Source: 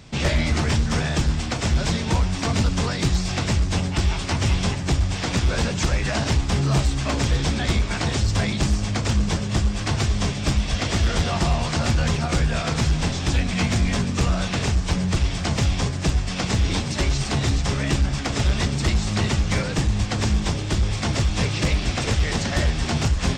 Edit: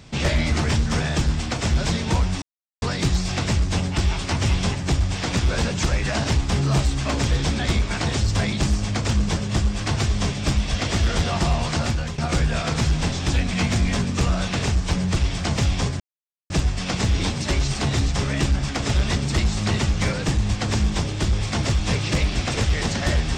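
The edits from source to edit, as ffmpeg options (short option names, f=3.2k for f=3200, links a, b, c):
-filter_complex "[0:a]asplit=5[a][b][c][d][e];[a]atrim=end=2.42,asetpts=PTS-STARTPTS,afade=t=out:st=2.416:d=0.004:c=hsin[f];[b]atrim=start=2.42:end=2.82,asetpts=PTS-STARTPTS,volume=0[g];[c]atrim=start=2.82:end=12.18,asetpts=PTS-STARTPTS,afade=t=in:d=0.004:c=hsin,afade=t=out:st=8.95:d=0.41:silence=0.237137[h];[d]atrim=start=12.18:end=16,asetpts=PTS-STARTPTS,afade=t=in:d=0.004:c=hsin:silence=0.237137,afade=t=out:st=3.816:d=0.004:c=hsin,apad=pad_dur=0.5[i];[e]atrim=start=16,asetpts=PTS-STARTPTS,afade=t=in:d=0.004:c=hsin[j];[f][g][h][i][j]concat=n=5:v=0:a=1"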